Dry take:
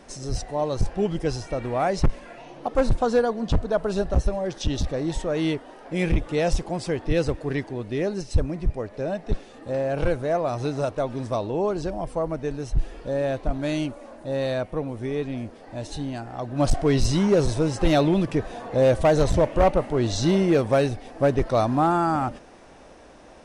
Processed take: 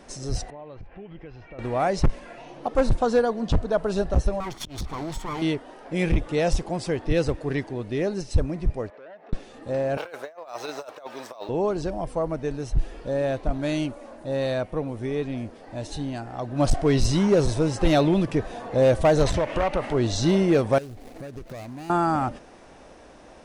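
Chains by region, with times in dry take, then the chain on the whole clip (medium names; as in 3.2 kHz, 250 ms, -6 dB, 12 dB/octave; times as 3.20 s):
0.50–1.59 s: compression 5:1, threshold -29 dBFS + four-pole ladder low-pass 2.9 kHz, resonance 45%
4.40–5.42 s: comb filter that takes the minimum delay 0.9 ms + compression 5:1, threshold -26 dBFS + slow attack 151 ms
8.90–9.33 s: compression 10:1, threshold -35 dBFS + band-pass 460–2100 Hz + transformer saturation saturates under 940 Hz
9.97–11.49 s: high-pass 700 Hz + compressor with a negative ratio -35 dBFS, ratio -0.5 + decimation joined by straight lines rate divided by 2×
19.26–19.94 s: peaking EQ 2.3 kHz +9.5 dB 3 oct + compression 5:1, threshold -20 dBFS
20.78–21.90 s: median filter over 41 samples + treble shelf 4.2 kHz +12 dB + compression 10:1, threshold -34 dBFS
whole clip: none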